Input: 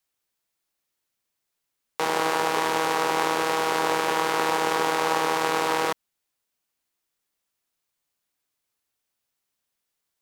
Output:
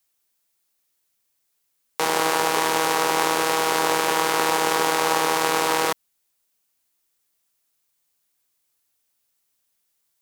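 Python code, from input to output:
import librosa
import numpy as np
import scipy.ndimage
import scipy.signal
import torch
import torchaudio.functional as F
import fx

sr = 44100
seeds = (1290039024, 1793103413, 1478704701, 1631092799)

y = fx.high_shelf(x, sr, hz=5400.0, db=8.5)
y = F.gain(torch.from_numpy(y), 2.0).numpy()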